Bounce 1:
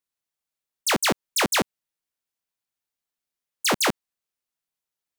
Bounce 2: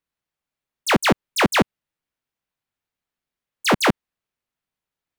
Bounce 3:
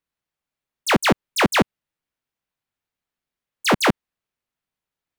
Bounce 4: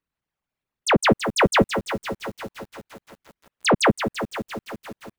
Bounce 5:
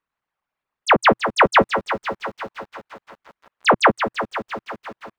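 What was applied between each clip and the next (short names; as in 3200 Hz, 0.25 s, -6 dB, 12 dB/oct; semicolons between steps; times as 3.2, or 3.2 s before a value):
tone controls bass +5 dB, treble -10 dB; gain +5 dB
nothing audible
formant sharpening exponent 2; lo-fi delay 0.169 s, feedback 80%, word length 7-bit, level -10 dB
EQ curve 120 Hz 0 dB, 330 Hz +4 dB, 1100 Hz +14 dB, 4900 Hz +3 dB, 11000 Hz -8 dB; gain -5.5 dB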